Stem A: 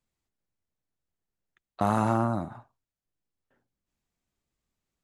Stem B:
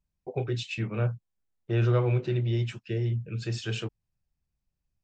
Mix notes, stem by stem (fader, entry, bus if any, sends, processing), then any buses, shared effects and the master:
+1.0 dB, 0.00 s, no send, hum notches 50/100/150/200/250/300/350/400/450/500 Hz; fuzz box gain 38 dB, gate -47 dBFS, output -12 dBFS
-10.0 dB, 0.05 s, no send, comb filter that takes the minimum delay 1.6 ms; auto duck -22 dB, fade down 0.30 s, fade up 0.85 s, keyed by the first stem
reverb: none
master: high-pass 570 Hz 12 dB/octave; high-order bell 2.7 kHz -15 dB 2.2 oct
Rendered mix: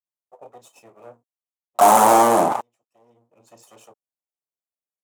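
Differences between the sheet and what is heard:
stem A +1.0 dB -> +8.0 dB; stem B -10.0 dB -> -4.0 dB

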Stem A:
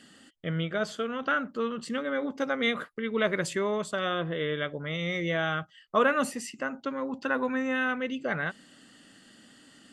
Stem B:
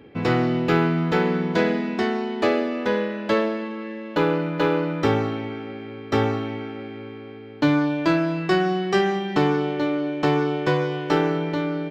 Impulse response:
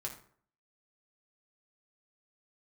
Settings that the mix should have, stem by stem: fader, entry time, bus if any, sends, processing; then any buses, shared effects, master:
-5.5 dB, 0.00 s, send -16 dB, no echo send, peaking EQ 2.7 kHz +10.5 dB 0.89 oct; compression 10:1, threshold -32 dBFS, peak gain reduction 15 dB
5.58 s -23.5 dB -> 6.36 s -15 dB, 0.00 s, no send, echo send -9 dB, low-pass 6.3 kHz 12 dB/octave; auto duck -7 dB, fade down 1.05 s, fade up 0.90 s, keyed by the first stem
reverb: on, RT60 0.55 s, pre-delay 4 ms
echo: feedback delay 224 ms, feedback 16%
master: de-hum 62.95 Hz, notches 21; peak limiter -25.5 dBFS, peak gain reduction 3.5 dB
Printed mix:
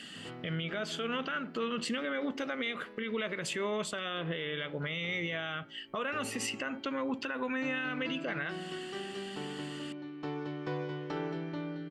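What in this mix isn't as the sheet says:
stem A -5.5 dB -> +3.0 dB; master: missing de-hum 62.95 Hz, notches 21

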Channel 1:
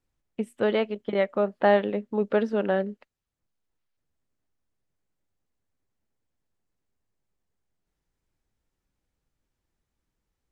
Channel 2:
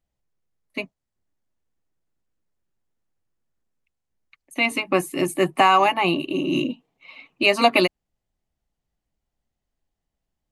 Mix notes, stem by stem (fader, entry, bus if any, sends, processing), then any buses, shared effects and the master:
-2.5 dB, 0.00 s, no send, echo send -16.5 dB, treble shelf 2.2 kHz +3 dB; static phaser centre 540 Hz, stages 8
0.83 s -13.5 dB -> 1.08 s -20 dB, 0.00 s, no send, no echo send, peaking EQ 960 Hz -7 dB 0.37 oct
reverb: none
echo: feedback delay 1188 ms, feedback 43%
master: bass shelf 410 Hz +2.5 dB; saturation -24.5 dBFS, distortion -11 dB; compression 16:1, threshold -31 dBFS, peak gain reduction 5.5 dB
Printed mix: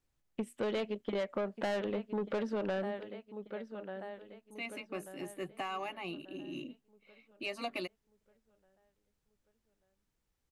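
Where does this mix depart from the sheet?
stem 1: missing static phaser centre 540 Hz, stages 8; master: missing bass shelf 410 Hz +2.5 dB

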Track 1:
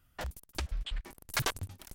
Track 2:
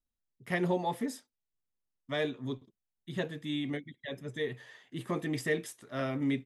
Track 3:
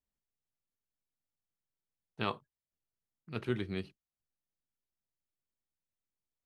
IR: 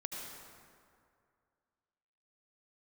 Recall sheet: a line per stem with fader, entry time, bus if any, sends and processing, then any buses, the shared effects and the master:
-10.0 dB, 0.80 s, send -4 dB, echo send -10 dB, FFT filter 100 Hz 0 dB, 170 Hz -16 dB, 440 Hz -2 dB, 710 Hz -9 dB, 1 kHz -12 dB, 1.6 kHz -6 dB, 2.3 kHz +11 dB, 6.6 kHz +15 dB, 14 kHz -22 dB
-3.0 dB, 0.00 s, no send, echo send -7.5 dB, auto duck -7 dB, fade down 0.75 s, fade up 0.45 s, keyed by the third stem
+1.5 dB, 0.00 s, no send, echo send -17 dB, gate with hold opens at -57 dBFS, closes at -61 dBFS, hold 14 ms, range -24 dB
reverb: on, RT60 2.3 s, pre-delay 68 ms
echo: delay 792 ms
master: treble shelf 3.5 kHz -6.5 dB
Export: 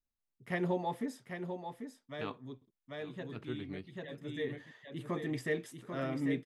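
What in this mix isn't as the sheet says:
stem 1: muted; stem 3 +1.5 dB -> -7.5 dB; reverb: off

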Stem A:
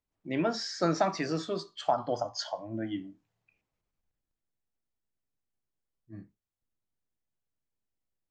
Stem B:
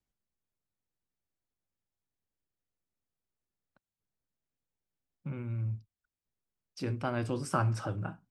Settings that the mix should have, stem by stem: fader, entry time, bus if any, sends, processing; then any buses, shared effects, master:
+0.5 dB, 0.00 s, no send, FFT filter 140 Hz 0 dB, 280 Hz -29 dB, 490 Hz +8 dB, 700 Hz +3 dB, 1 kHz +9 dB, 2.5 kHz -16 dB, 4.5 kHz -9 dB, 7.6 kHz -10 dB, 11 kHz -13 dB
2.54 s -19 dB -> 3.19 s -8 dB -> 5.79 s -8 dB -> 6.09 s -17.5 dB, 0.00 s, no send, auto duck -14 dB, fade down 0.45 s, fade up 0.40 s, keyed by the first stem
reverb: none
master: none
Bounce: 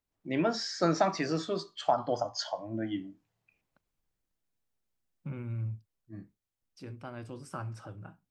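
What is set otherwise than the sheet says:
stem A: missing FFT filter 140 Hz 0 dB, 280 Hz -29 dB, 490 Hz +8 dB, 700 Hz +3 dB, 1 kHz +9 dB, 2.5 kHz -16 dB, 4.5 kHz -9 dB, 7.6 kHz -10 dB, 11 kHz -13 dB; stem B -19.0 dB -> -11.5 dB

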